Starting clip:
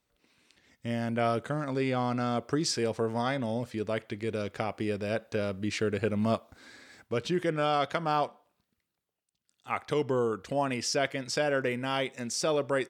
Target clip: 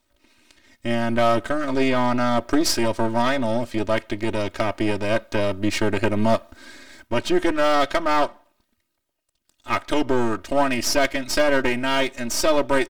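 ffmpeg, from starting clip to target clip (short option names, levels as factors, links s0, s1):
-af "aeval=exprs='if(lt(val(0),0),0.251*val(0),val(0))':c=same,aecho=1:1:3.2:0.93,asoftclip=type=hard:threshold=0.133,volume=2.82"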